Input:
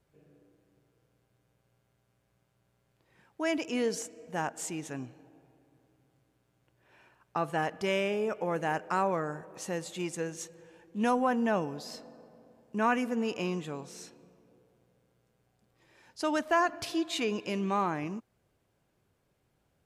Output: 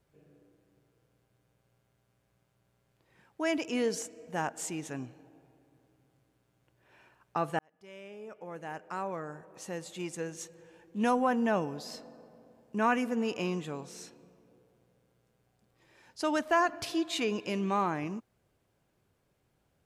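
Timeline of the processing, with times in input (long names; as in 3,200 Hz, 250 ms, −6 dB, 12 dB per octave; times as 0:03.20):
0:07.59–0:11.02: fade in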